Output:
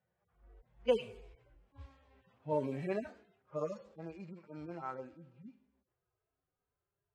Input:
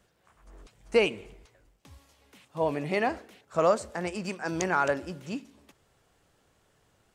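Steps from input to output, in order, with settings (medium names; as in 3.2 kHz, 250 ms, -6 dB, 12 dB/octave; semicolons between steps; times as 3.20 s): harmonic-percussive separation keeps harmonic; Doppler pass-by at 1.79 s, 27 m/s, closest 13 m; level-controlled noise filter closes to 1.9 kHz, open at -36 dBFS; trim +1 dB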